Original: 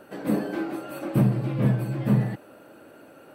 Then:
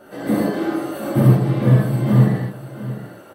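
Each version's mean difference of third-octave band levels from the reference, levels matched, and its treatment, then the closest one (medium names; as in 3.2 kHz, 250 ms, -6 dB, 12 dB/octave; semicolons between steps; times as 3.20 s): 4.0 dB: band-stop 2.5 kHz, Q 8.4; on a send: delay 700 ms -14.5 dB; on the sum: gated-style reverb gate 170 ms flat, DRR -7.5 dB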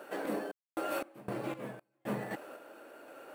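11.5 dB: high-pass 430 Hz 12 dB/octave; random-step tremolo 3.9 Hz, depth 100%; in parallel at -4 dB: sample-rate reducer 10 kHz, jitter 0%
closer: first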